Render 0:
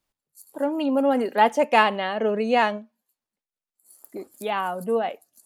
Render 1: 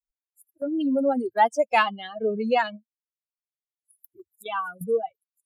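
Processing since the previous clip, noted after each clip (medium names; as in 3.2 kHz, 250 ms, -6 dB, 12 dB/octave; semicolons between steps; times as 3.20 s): expander on every frequency bin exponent 3; gate -46 dBFS, range -8 dB; in parallel at +1 dB: compression, threshold -33 dBFS, peak gain reduction 16.5 dB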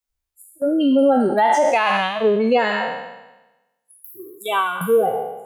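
spectral sustain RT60 1.05 s; peak limiter -15 dBFS, peak gain reduction 11.5 dB; trim +7 dB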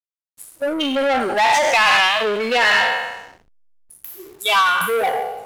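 overdrive pedal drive 17 dB, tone 2.7 kHz, clips at -7.5 dBFS; tilt shelf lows -9 dB, about 1.2 kHz; hysteresis with a dead band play -34.5 dBFS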